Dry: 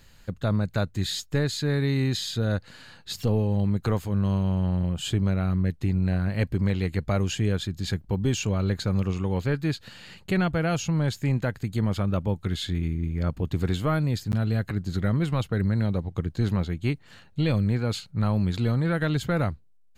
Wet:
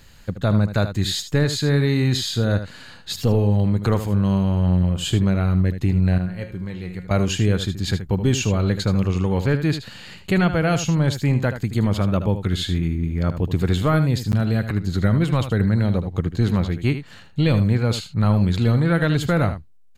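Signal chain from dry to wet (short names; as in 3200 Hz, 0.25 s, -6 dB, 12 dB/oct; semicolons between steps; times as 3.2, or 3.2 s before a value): 6.18–7.11 resonator 180 Hz, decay 0.44 s, harmonics all, mix 80%; on a send: echo 77 ms -10.5 dB; on the sum: gain +5.5 dB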